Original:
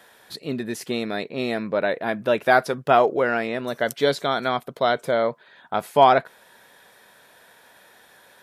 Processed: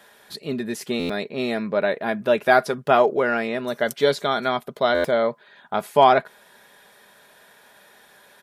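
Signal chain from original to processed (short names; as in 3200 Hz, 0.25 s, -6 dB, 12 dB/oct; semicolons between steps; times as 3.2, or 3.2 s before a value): comb 4.9 ms, depth 35%; stuck buffer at 0.99/4.94, samples 512, times 8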